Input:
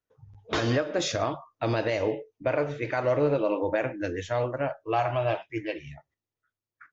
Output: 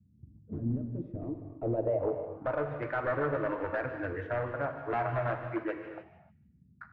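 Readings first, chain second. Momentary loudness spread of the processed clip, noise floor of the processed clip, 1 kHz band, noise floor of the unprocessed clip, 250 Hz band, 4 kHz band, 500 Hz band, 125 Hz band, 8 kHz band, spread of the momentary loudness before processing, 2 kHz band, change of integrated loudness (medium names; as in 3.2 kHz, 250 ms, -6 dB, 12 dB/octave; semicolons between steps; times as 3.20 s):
9 LU, -64 dBFS, -5.0 dB, under -85 dBFS, -4.5 dB, under -20 dB, -6.0 dB, -4.0 dB, no reading, 8 LU, -4.5 dB, -5.5 dB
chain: reverb removal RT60 0.61 s; in parallel at +0.5 dB: compression, threshold -41 dBFS, peak gain reduction 18.5 dB; on the sum: Gaussian low-pass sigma 1.6 samples; crossover distortion -46.5 dBFS; high-pass sweep 62 Hz -> 750 Hz, 4.92–6.15 s; wavefolder -20 dBFS; low-pass sweep 220 Hz -> 1.5 kHz, 0.94–2.71 s; band noise 63–210 Hz -56 dBFS; on a send: feedback echo behind a high-pass 149 ms, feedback 32%, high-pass 2.7 kHz, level -12 dB; on the sum: gated-style reverb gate 330 ms flat, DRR 5 dB; trim -7 dB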